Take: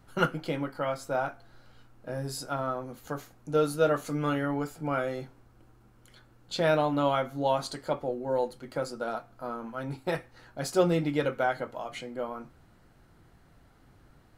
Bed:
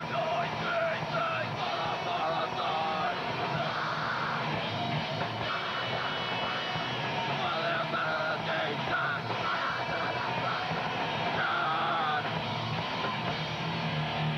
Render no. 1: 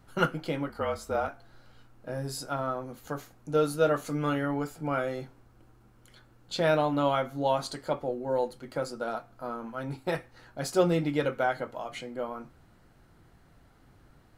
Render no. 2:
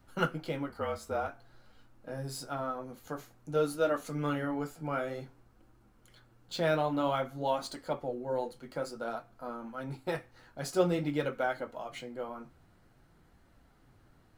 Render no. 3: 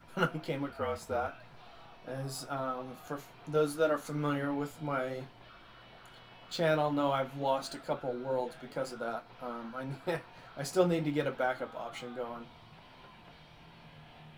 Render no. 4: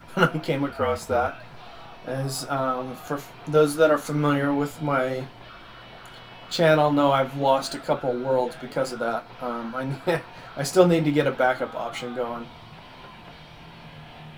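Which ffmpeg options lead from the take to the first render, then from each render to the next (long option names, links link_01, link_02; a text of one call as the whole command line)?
ffmpeg -i in.wav -filter_complex "[0:a]asettb=1/sr,asplit=3[link_01][link_02][link_03];[link_01]atrim=end=0.694[link_04];[link_02]atrim=start=0.69:end=1.28,asetpts=PTS-STARTPTS,afade=type=in:duration=0.004:curve=qsin,afade=type=out:start_time=0.586:duration=0.004:curve=qsin,afreqshift=-46[link_05];[link_03]atrim=start=1.276[link_06];[link_04][link_05]acrossfade=duration=0.004:curve1=hsin:curve2=qsin[link_07];[link_07][link_06]acrossfade=duration=0.004:curve1=qsin:curve2=hsin" out.wav
ffmpeg -i in.wav -filter_complex "[0:a]flanger=delay=3.3:depth=9:regen=-52:speed=0.52:shape=sinusoidal,acrossover=split=570|2900[link_01][link_02][link_03];[link_03]acrusher=bits=3:mode=log:mix=0:aa=0.000001[link_04];[link_01][link_02][link_04]amix=inputs=3:normalize=0" out.wav
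ffmpeg -i in.wav -i bed.wav -filter_complex "[1:a]volume=-23dB[link_01];[0:a][link_01]amix=inputs=2:normalize=0" out.wav
ffmpeg -i in.wav -af "volume=10.5dB" out.wav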